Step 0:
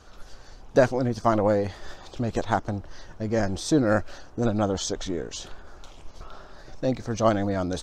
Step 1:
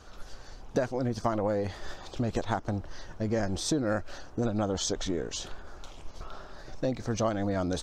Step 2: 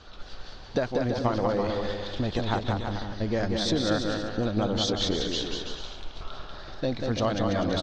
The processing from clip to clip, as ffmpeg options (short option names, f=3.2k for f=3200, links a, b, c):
-af "acompressor=threshold=-25dB:ratio=6"
-filter_complex "[0:a]lowpass=f=3.9k:t=q:w=2.4,asplit=2[a][b];[b]aecho=0:1:190|332.5|439.4|519.5|579.6:0.631|0.398|0.251|0.158|0.1[c];[a][c]amix=inputs=2:normalize=0,volume=1dB"